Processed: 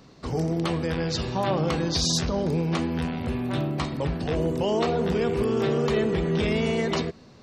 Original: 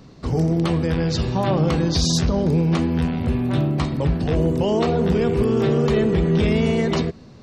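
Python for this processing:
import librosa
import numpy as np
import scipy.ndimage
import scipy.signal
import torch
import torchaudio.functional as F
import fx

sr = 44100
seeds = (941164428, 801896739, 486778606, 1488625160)

y = fx.low_shelf(x, sr, hz=300.0, db=-8.0)
y = y * 10.0 ** (-1.5 / 20.0)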